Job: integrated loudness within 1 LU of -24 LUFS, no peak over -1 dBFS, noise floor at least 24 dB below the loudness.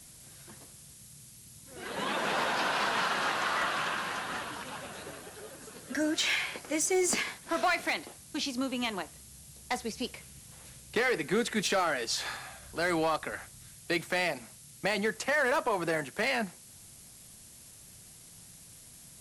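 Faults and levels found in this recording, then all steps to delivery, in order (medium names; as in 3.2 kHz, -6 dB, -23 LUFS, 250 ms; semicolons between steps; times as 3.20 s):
clipped samples 0.5%; clipping level -21.5 dBFS; noise floor -53 dBFS; noise floor target -55 dBFS; loudness -31.0 LUFS; peak level -21.5 dBFS; loudness target -24.0 LUFS
-> clip repair -21.5 dBFS; noise print and reduce 6 dB; trim +7 dB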